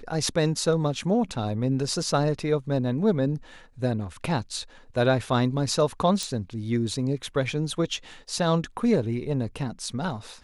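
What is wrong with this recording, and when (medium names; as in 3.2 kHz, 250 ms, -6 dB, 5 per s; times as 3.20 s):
6.23 s: pop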